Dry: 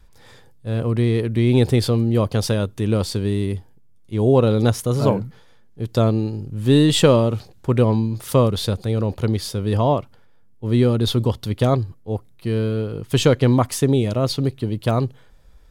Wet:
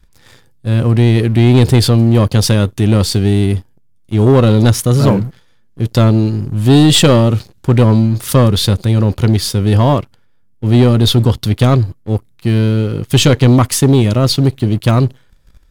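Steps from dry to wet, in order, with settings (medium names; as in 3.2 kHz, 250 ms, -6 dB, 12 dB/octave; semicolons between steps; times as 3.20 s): peaking EQ 710 Hz -6.5 dB 1.2 oct; band-stop 450 Hz, Q 14; waveshaping leveller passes 2; trim +3.5 dB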